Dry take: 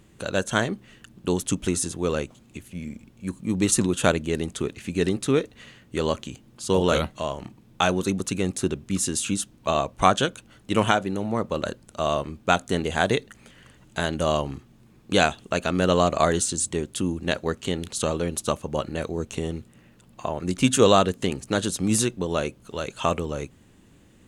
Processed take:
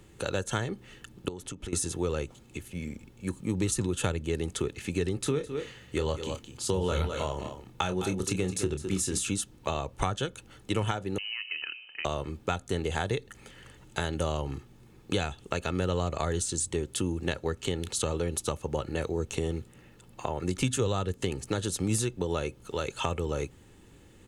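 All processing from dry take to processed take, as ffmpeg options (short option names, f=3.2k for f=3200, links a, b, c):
-filter_complex "[0:a]asettb=1/sr,asplit=3[a][b][c];[a]atrim=end=1.284[d];[b]atrim=start=1.28:end=1.73,asetpts=PTS-STARTPTS,afade=t=in:d=0.004:c=qsin,afade=t=out:st=0.446:d=0.004:c=qsin,highshelf=f=3.7k:g=-8.5,acompressor=threshold=-35dB:ratio=8:attack=3.2:release=140:knee=1:detection=peak[e];[c]atrim=start=1.726[f];[d][e]acrossfade=d=0.004:c1=hsin:c2=qsin[g];[g][f]acrossfade=d=0.004:c1=qsin:c2=hsin,asettb=1/sr,asplit=3[h][i][j];[h]atrim=end=5.214[k];[i]atrim=start=5.21:end=9.29,asetpts=PTS-STARTPTS,afade=t=in:d=0.004:c=qsin,afade=t=out:st=4.076:d=0.004:c=qsin,asplit=2[l][m];[m]adelay=27,volume=-9dB[n];[l][n]amix=inputs=2:normalize=0,atrim=end_sample=179928,aecho=1:1:209:0.251,atrim=end_sample=179928[o];[j]atrim=start=9.286[p];[k][o]acrossfade=d=0.004:c1=hsin:c2=qsin[q];[q][p]acrossfade=d=0.004:c1=qsin:c2=hsin,asettb=1/sr,asplit=3[r][s][t];[r]atrim=end=11.184[u];[s]atrim=start=11.18:end=12.05,asetpts=PTS-STARTPTS,afade=t=in:d=0.004:c=qsin,afade=t=out:st=0.866:d=0.004:c=qsin,bandreject=f=122:t=h:w=4,bandreject=f=244:t=h:w=4,bandreject=f=366:t=h:w=4,bandreject=f=488:t=h:w=4,bandreject=f=610:t=h:w=4,bandreject=f=732:t=h:w=4,bandreject=f=854:t=h:w=4,bandreject=f=976:t=h:w=4,acompressor=threshold=-31dB:ratio=12:attack=3.2:release=140:knee=1:detection=peak,lowpass=f=2.6k:t=q:w=0.5098,lowpass=f=2.6k:t=q:w=0.6013,lowpass=f=2.6k:t=q:w=0.9,lowpass=f=2.6k:t=q:w=2.563,afreqshift=-3100[v];[t]atrim=start=12.046[w];[u][v]acrossfade=d=0.004:c1=hsin:c2=qsin[x];[x][w]acrossfade=d=0.004:c1=qsin:c2=hsin,aecho=1:1:2.3:0.39,acrossover=split=140[y][z];[z]acompressor=threshold=-27dB:ratio=10[aa];[y][aa]amix=inputs=2:normalize=0"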